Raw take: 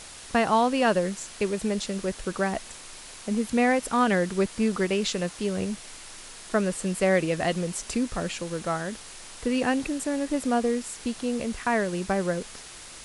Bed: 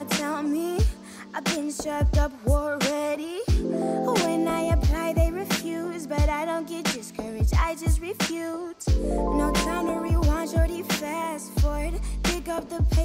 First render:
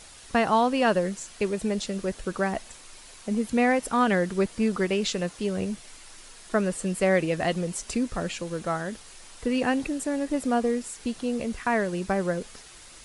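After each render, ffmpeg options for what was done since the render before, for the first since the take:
ffmpeg -i in.wav -af "afftdn=noise_reduction=6:noise_floor=-44" out.wav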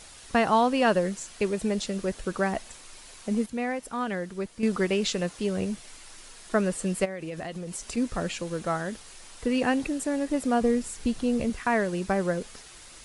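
ffmpeg -i in.wav -filter_complex "[0:a]asplit=3[link_01][link_02][link_03];[link_01]afade=type=out:start_time=7.04:duration=0.02[link_04];[link_02]acompressor=threshold=-31dB:ratio=16:attack=3.2:release=140:knee=1:detection=peak,afade=type=in:start_time=7.04:duration=0.02,afade=type=out:start_time=7.96:duration=0.02[link_05];[link_03]afade=type=in:start_time=7.96:duration=0.02[link_06];[link_04][link_05][link_06]amix=inputs=3:normalize=0,asettb=1/sr,asplit=3[link_07][link_08][link_09];[link_07]atrim=end=10.614[link_10];[link_08]atrim=start=10.61:end=11.5,asetpts=PTS-STARTPTS,afade=type=in:duration=0.004:curve=qsin,afade=type=out:start_time=0.886:duration=0.004:curve=qsin,lowshelf=frequency=150:gain=11.5[link_11];[link_09]atrim=start=11.496[link_12];[link_10][link_11]acrossfade=duration=0.004:curve1=hsin:curve2=qsin[link_13];[link_13][link_12]acrossfade=duration=0.004:curve1=qsin:curve2=hsin,asplit=3[link_14][link_15][link_16];[link_14]atrim=end=3.462[link_17];[link_15]atrim=start=3.458:end=4.632,asetpts=PTS-STARTPTS,volume=-8dB[link_18];[link_16]atrim=start=4.628[link_19];[link_17][link_18]acrossfade=duration=0.004:curve1=hsin:curve2=hsin[link_20];[link_20][link_19]acrossfade=duration=0.004:curve1=hsin:curve2=hsin" out.wav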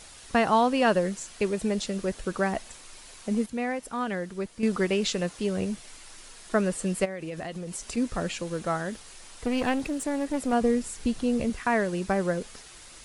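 ffmpeg -i in.wav -filter_complex "[0:a]asettb=1/sr,asplit=3[link_01][link_02][link_03];[link_01]atrim=end=8.904[link_04];[link_02]atrim=start=8.9:end=10.53,asetpts=PTS-STARTPTS,afade=type=in:duration=0.004:curve=qsin,afade=type=out:start_time=1.626:duration=0.004:curve=qsin,aeval=exprs='clip(val(0),-1,0.0335)':channel_layout=same[link_05];[link_03]atrim=start=10.526[link_06];[link_04][link_05]acrossfade=duration=0.004:curve1=hsin:curve2=qsin[link_07];[link_07][link_06]acrossfade=duration=0.004:curve1=qsin:curve2=hsin" out.wav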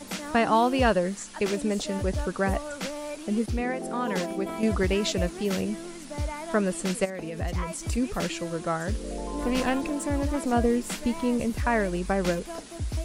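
ffmpeg -i in.wav -i bed.wav -filter_complex "[1:a]volume=-9dB[link_01];[0:a][link_01]amix=inputs=2:normalize=0" out.wav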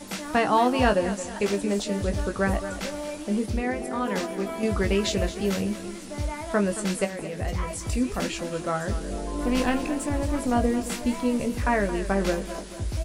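ffmpeg -i in.wav -filter_complex "[0:a]asplit=2[link_01][link_02];[link_02]adelay=20,volume=-7dB[link_03];[link_01][link_03]amix=inputs=2:normalize=0,aecho=1:1:223|446|669|892|1115:0.224|0.105|0.0495|0.0232|0.0109" out.wav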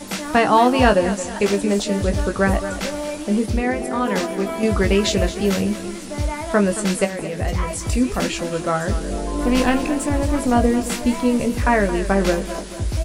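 ffmpeg -i in.wav -af "volume=6.5dB" out.wav

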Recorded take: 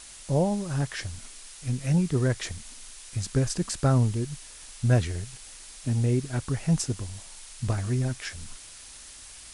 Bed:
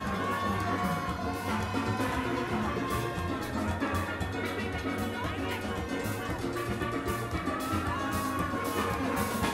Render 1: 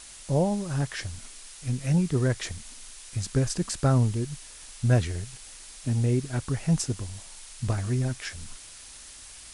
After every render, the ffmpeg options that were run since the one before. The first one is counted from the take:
ffmpeg -i in.wav -af anull out.wav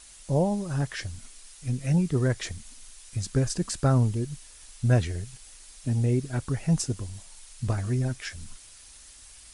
ffmpeg -i in.wav -af "afftdn=noise_reduction=6:noise_floor=-46" out.wav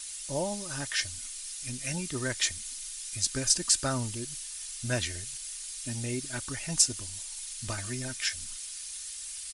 ffmpeg -i in.wav -af "tiltshelf=frequency=1400:gain=-10,aecho=1:1:3.3:0.42" out.wav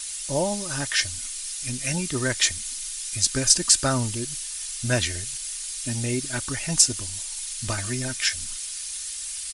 ffmpeg -i in.wav -af "volume=7dB,alimiter=limit=-2dB:level=0:latency=1" out.wav

